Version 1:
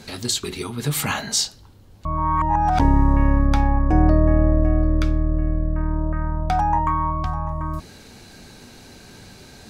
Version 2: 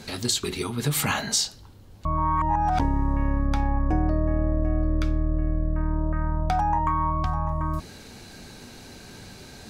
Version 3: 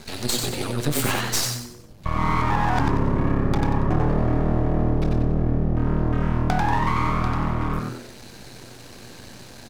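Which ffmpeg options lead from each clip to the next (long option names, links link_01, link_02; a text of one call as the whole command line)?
ffmpeg -i in.wav -af "acompressor=threshold=-19dB:ratio=6" out.wav
ffmpeg -i in.wav -filter_complex "[0:a]aeval=exprs='max(val(0),0)':channel_layout=same,asplit=6[link_01][link_02][link_03][link_04][link_05][link_06];[link_02]adelay=93,afreqshift=120,volume=-4dB[link_07];[link_03]adelay=186,afreqshift=240,volume=-12.4dB[link_08];[link_04]adelay=279,afreqshift=360,volume=-20.8dB[link_09];[link_05]adelay=372,afreqshift=480,volume=-29.2dB[link_10];[link_06]adelay=465,afreqshift=600,volume=-37.6dB[link_11];[link_01][link_07][link_08][link_09][link_10][link_11]amix=inputs=6:normalize=0,volume=3.5dB" out.wav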